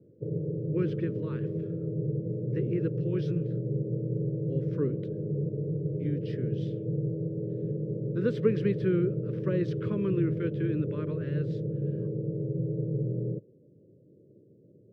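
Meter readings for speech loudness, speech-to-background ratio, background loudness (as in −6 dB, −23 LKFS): −33.0 LKFS, −0.5 dB, −32.5 LKFS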